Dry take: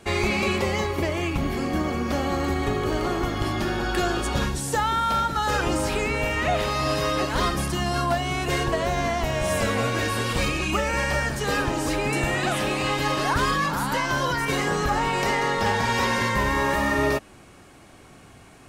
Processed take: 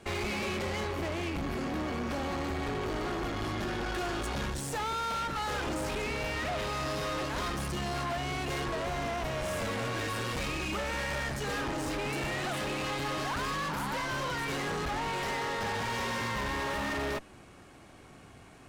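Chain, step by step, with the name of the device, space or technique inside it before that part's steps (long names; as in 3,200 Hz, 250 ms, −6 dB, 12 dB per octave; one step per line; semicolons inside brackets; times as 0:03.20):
tube preamp driven hard (tube saturation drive 31 dB, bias 0.7; high-shelf EQ 6,200 Hz −5 dB)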